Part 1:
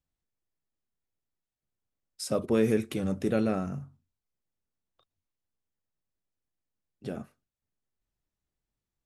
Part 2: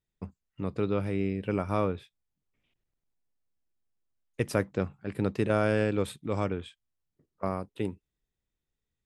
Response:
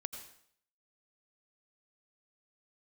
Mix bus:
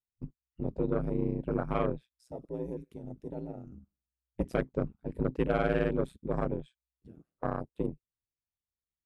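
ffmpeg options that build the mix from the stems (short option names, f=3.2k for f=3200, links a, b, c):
-filter_complex "[0:a]volume=-10.5dB,asplit=2[a][b];[b]volume=-16.5dB[c];[1:a]volume=2.5dB[d];[2:a]atrim=start_sample=2205[e];[c][e]afir=irnorm=-1:irlink=0[f];[a][d][f]amix=inputs=3:normalize=0,afwtdn=0.02,aeval=exprs='val(0)*sin(2*PI*63*n/s)':c=same,asoftclip=type=tanh:threshold=-15.5dB"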